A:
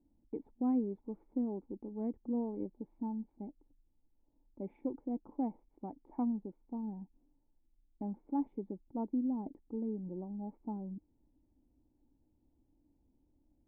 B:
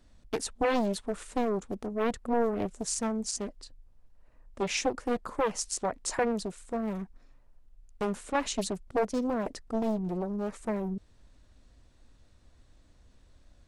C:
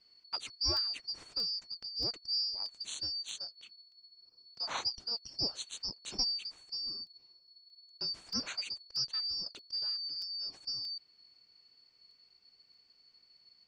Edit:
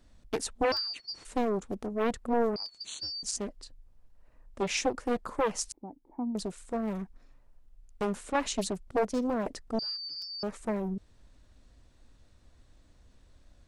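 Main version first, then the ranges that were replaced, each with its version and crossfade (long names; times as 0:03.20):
B
0:00.72–0:01.25: punch in from C
0:02.56–0:03.23: punch in from C
0:05.72–0:06.35: punch in from A
0:09.79–0:10.43: punch in from C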